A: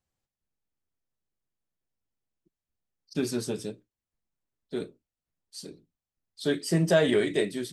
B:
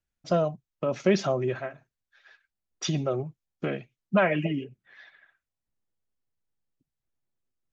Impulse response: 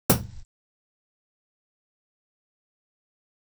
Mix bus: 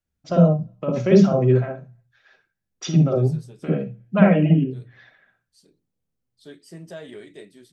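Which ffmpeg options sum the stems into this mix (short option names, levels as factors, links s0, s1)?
-filter_complex "[0:a]volume=0.158,asplit=2[s0][s1];[1:a]volume=0.944,asplit=2[s2][s3];[s3]volume=0.0944[s4];[s1]apad=whole_len=340637[s5];[s2][s5]sidechaincompress=threshold=0.00224:ratio=8:attack=30:release=243[s6];[2:a]atrim=start_sample=2205[s7];[s4][s7]afir=irnorm=-1:irlink=0[s8];[s0][s6][s8]amix=inputs=3:normalize=0"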